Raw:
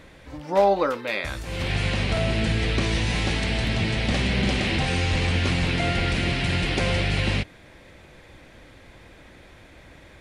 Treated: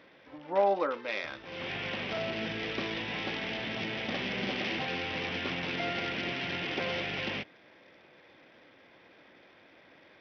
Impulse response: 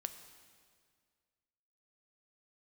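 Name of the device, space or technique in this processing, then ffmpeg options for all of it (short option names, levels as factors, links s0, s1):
Bluetooth headset: -af "highpass=250,aresample=8000,aresample=44100,volume=0.447" -ar 44100 -c:a sbc -b:a 64k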